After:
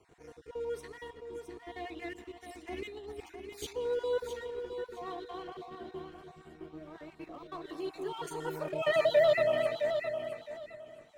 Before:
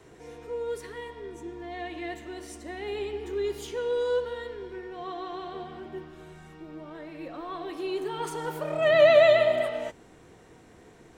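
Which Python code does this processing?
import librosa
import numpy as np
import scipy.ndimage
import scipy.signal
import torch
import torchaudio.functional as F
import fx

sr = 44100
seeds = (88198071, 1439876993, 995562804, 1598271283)

y = fx.spec_dropout(x, sr, seeds[0], share_pct=34)
y = fx.leveller(y, sr, passes=1)
y = fx.over_compress(y, sr, threshold_db=-36.0, ratio=-1.0, at=(2.67, 3.73))
y = fx.echo_feedback(y, sr, ms=664, feedback_pct=23, wet_db=-7.5)
y = F.gain(torch.from_numpy(y), -8.0).numpy()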